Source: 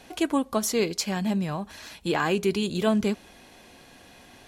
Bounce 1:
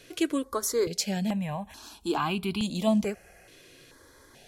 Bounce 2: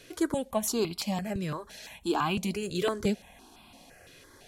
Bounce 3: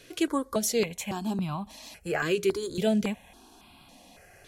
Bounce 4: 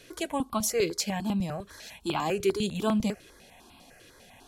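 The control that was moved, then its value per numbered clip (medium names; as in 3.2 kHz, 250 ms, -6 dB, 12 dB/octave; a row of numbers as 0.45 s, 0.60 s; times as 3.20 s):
stepped phaser, rate: 2.3 Hz, 5.9 Hz, 3.6 Hz, 10 Hz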